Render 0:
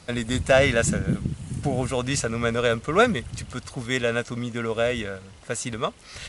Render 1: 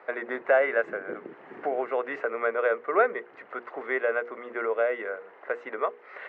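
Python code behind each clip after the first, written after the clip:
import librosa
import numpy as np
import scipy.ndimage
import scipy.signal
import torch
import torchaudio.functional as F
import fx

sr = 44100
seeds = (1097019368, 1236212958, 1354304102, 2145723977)

y = scipy.signal.sosfilt(scipy.signal.ellip(3, 1.0, 80, [380.0, 1900.0], 'bandpass', fs=sr, output='sos'), x)
y = fx.hum_notches(y, sr, base_hz=60, count=8)
y = fx.band_squash(y, sr, depth_pct=40)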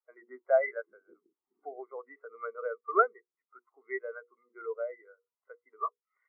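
y = x + 0.48 * np.pad(x, (int(0.9 * sr / 1000.0), 0))[:len(x)]
y = fx.spectral_expand(y, sr, expansion=2.5)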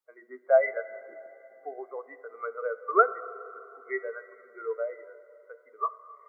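y = fx.rev_plate(x, sr, seeds[0], rt60_s=3.2, hf_ratio=0.9, predelay_ms=0, drr_db=13.0)
y = y * librosa.db_to_amplitude(3.5)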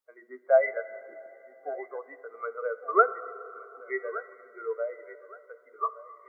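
y = fx.echo_feedback(x, sr, ms=1168, feedback_pct=25, wet_db=-17)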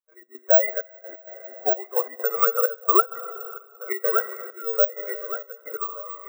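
y = fx.recorder_agc(x, sr, target_db=-12.0, rise_db_per_s=9.7, max_gain_db=30)
y = fx.step_gate(y, sr, bpm=130, pattern='.x.xxxx.', floor_db=-12.0, edge_ms=4.5)
y = (np.kron(scipy.signal.resample_poly(y, 1, 2), np.eye(2)[0]) * 2)[:len(y)]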